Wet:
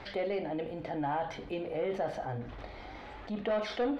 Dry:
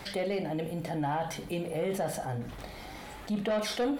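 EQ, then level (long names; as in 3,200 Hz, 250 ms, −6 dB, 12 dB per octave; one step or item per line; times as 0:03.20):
high-frequency loss of the air 230 metres
parametric band 170 Hz −10.5 dB 0.63 octaves
0.0 dB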